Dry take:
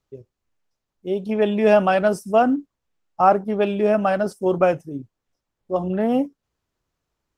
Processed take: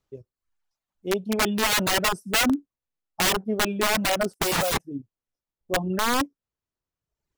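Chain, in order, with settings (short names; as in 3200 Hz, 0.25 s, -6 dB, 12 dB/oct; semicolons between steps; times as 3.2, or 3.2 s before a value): 4.33–4.79 sample leveller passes 5; wrapped overs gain 14 dB; reverb removal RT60 0.98 s; gain -1.5 dB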